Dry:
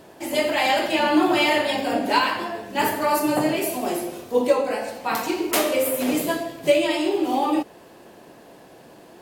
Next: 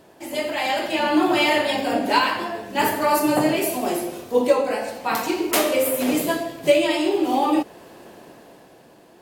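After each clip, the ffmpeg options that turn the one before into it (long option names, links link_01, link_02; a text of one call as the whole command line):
ffmpeg -i in.wav -af "dynaudnorm=framelen=100:gausssize=21:maxgain=11.5dB,volume=-4dB" out.wav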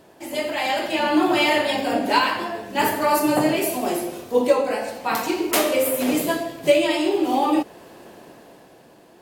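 ffmpeg -i in.wav -af anull out.wav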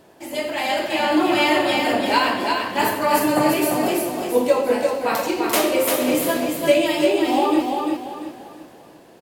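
ffmpeg -i in.wav -af "aecho=1:1:344|688|1032|1376:0.631|0.221|0.0773|0.0271" out.wav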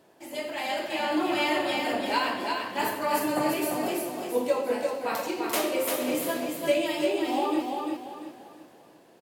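ffmpeg -i in.wav -af "highpass=frequency=130:poles=1,volume=-8dB" out.wav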